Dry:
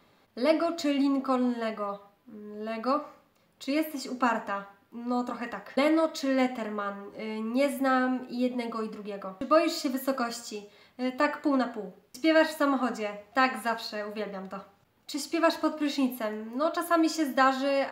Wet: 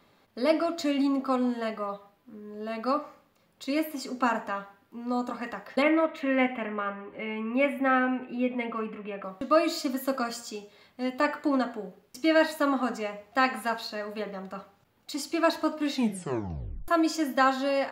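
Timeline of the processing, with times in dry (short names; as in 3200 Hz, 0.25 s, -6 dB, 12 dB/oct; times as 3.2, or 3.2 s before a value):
5.82–9.24 resonant high shelf 3600 Hz -13 dB, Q 3
15.93 tape stop 0.95 s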